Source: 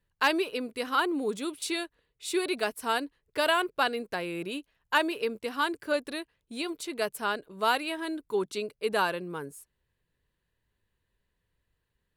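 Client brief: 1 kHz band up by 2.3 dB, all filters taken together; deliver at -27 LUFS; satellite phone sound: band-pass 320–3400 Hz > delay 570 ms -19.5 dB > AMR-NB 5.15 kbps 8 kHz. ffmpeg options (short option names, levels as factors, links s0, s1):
-af "highpass=320,lowpass=3400,equalizer=f=1000:t=o:g=3,aecho=1:1:570:0.106,volume=1.58" -ar 8000 -c:a libopencore_amrnb -b:a 5150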